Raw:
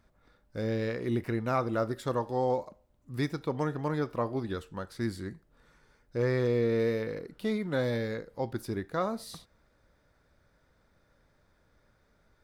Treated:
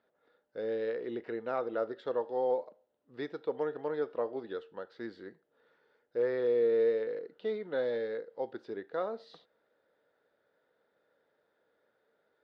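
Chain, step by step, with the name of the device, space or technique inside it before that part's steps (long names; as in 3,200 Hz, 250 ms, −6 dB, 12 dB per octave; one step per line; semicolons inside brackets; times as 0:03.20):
phone earpiece (loudspeaker in its box 390–3,600 Hz, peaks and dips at 460 Hz +8 dB, 1,100 Hz −7 dB, 2,300 Hz −8 dB)
level −3.5 dB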